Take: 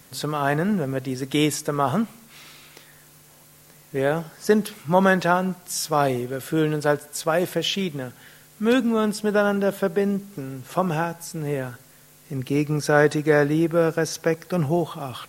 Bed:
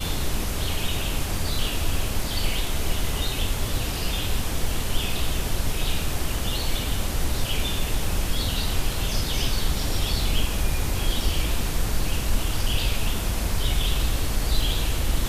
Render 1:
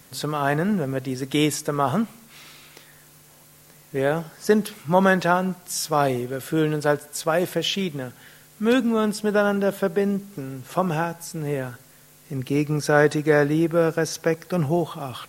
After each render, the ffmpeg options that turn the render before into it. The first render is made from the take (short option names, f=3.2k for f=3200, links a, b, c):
-af anull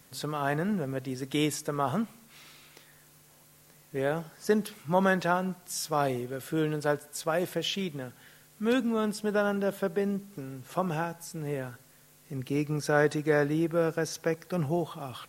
-af "volume=-7dB"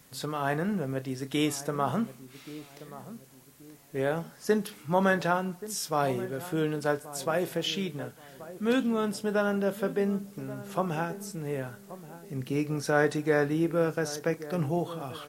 -filter_complex "[0:a]asplit=2[a][b];[b]adelay=30,volume=-13dB[c];[a][c]amix=inputs=2:normalize=0,asplit=2[d][e];[e]adelay=1129,lowpass=f=1k:p=1,volume=-14.5dB,asplit=2[f][g];[g]adelay=1129,lowpass=f=1k:p=1,volume=0.39,asplit=2[h][i];[i]adelay=1129,lowpass=f=1k:p=1,volume=0.39,asplit=2[j][k];[k]adelay=1129,lowpass=f=1k:p=1,volume=0.39[l];[d][f][h][j][l]amix=inputs=5:normalize=0"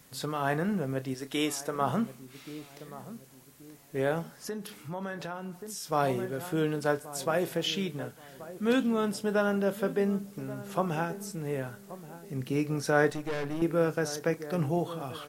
-filter_complex "[0:a]asettb=1/sr,asplit=3[a][b][c];[a]atrim=end=1.144[d];[b]atrim=start=1.14:end=1.81,asetpts=PTS-STARTPTS,afade=t=in:d=0.004:c=qsin,afade=t=out:st=0.666:d=0.004:c=qsin,equalizer=f=110:t=o:w=2:g=-10[e];[c]atrim=start=1.806[f];[d][e]acrossfade=d=0.004:c1=hsin:c2=qsin[g];[g][f]acrossfade=d=0.004:c1=qsin:c2=hsin,asettb=1/sr,asplit=3[h][i][j];[h]atrim=end=4.484[k];[i]atrim=start=4.48:end=5.92,asetpts=PTS-STARTPTS,afade=t=in:d=0.004:c=qsin,afade=t=out:st=1.436:d=0.004:c=qsin,acompressor=threshold=-38dB:ratio=2.5:attack=3.2:release=140:knee=1:detection=peak[l];[j]atrim=start=5.916[m];[k][l]acrossfade=d=0.004:c1=hsin:c2=qsin[n];[n][m]acrossfade=d=0.004:c1=qsin:c2=hsin,asettb=1/sr,asplit=3[o][p][q];[o]atrim=end=13.104[r];[p]atrim=start=13.1:end=13.62,asetpts=PTS-STARTPTS,afade=t=in:d=0.004:c=qsin,afade=t=out:st=0.516:d=0.004:c=qsin,aeval=exprs='(tanh(31.6*val(0)+0.7)-tanh(0.7))/31.6':c=same[s];[q]atrim=start=13.616[t];[r][s]acrossfade=d=0.004:c1=hsin:c2=qsin[u];[u][t]acrossfade=d=0.004:c1=qsin:c2=hsin"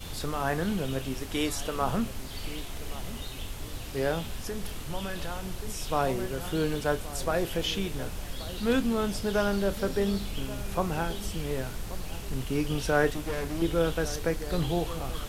-filter_complex "[1:a]volume=-12.5dB[a];[0:a][a]amix=inputs=2:normalize=0"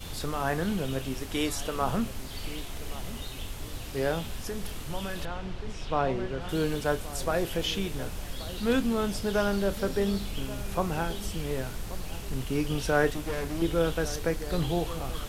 -filter_complex "[0:a]asettb=1/sr,asplit=3[a][b][c];[a]atrim=end=5.254[d];[b]atrim=start=5.25:end=6.49,asetpts=PTS-STARTPTS,afade=t=in:d=0.004:c=qsin,afade=t=out:st=1.236:d=0.004:c=qsin,lowpass=3.6k[e];[c]atrim=start=6.486[f];[d][e]acrossfade=d=0.004:c1=hsin:c2=qsin[g];[g][f]acrossfade=d=0.004:c1=qsin:c2=hsin"